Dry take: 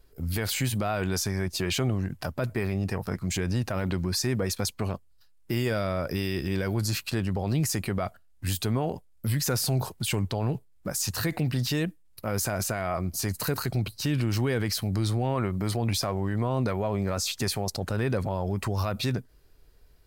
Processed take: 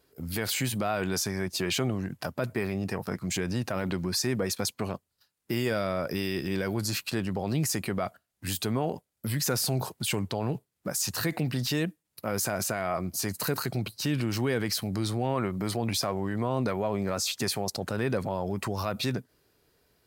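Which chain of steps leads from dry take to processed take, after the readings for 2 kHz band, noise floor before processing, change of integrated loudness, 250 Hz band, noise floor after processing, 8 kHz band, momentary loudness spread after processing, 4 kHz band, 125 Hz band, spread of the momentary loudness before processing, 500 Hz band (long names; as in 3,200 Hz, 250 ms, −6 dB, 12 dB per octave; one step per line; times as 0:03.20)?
0.0 dB, −57 dBFS, −1.5 dB, −1.0 dB, −80 dBFS, 0.0 dB, 5 LU, 0.0 dB, −4.5 dB, 5 LU, 0.0 dB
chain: high-pass filter 140 Hz 12 dB per octave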